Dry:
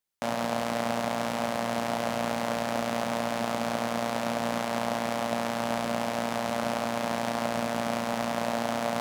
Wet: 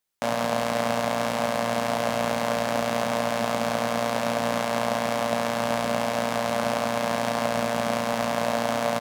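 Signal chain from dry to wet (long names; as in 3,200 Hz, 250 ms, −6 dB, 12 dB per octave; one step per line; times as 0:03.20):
mains-hum notches 50/100/150/200/250/300/350 Hz
double-tracking delay 19 ms −12 dB
level +4 dB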